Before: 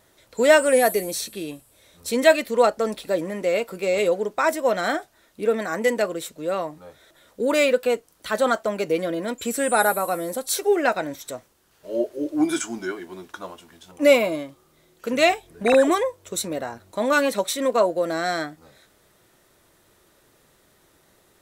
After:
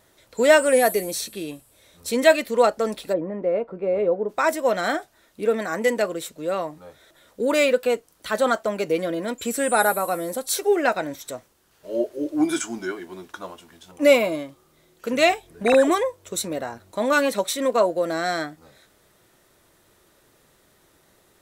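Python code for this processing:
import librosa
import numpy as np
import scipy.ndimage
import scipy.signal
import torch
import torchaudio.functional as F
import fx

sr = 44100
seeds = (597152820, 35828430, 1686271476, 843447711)

y = fx.lowpass(x, sr, hz=1000.0, slope=12, at=(3.12, 4.28), fade=0.02)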